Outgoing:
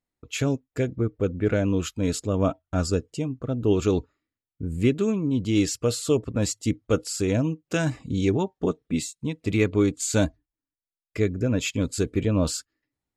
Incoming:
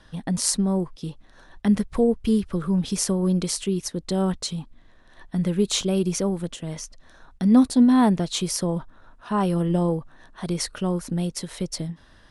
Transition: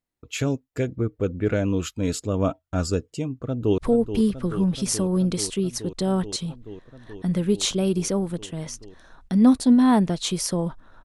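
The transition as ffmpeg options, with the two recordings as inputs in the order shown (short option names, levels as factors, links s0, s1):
-filter_complex "[0:a]apad=whole_dur=11.04,atrim=end=11.04,atrim=end=3.782[s0];[1:a]atrim=start=1.878:end=9.14[s1];[s0][s1]acrossfade=d=0.004:c1=hsin:c2=hsin,asplit=2[s2][s3];[s3]afade=t=in:st=3.39:d=0.01,afade=t=out:st=3.78:d=0.01,aecho=0:1:430|860|1290|1720|2150|2580|3010|3440|3870|4300|4730|5160:0.334965|0.284721|0.242013|0.205711|0.174854|0.148626|0.126332|0.107382|0.0912749|0.0775837|0.0659461|0.0560542[s4];[s2][s4]amix=inputs=2:normalize=0"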